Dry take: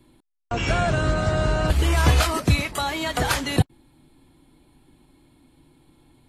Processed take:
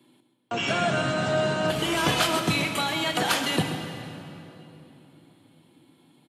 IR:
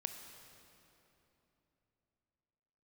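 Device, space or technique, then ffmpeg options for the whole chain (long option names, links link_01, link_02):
PA in a hall: -filter_complex "[0:a]highpass=frequency=150:width=0.5412,highpass=frequency=150:width=1.3066,equalizer=frequency=3100:width_type=o:width=0.43:gain=6,aecho=1:1:131:0.266[link_01];[1:a]atrim=start_sample=2205[link_02];[link_01][link_02]afir=irnorm=-1:irlink=0"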